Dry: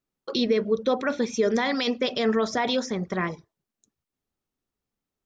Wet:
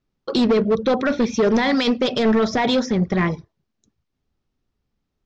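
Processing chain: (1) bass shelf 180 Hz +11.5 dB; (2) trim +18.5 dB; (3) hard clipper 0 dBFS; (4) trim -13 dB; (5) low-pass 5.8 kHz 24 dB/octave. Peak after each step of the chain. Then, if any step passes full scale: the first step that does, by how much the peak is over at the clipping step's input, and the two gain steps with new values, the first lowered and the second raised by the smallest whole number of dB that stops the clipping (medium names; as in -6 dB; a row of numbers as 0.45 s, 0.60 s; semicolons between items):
-10.0 dBFS, +8.5 dBFS, 0.0 dBFS, -13.0 dBFS, -11.0 dBFS; step 2, 8.5 dB; step 2 +9.5 dB, step 4 -4 dB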